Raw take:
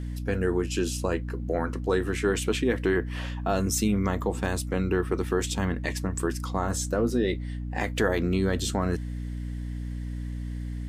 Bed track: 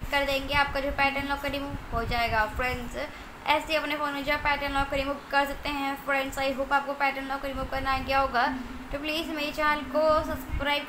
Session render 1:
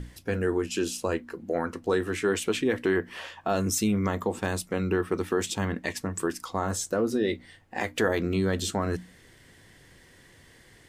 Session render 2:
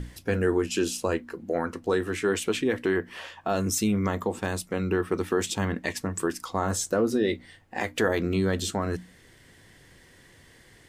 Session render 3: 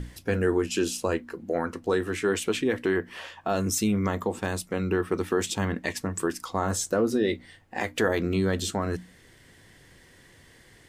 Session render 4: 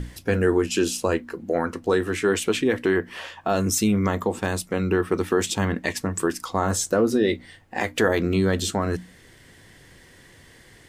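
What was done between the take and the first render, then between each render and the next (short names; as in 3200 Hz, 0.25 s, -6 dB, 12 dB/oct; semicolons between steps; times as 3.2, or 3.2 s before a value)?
notches 60/120/180/240/300 Hz
vocal rider 2 s
nothing audible
gain +4 dB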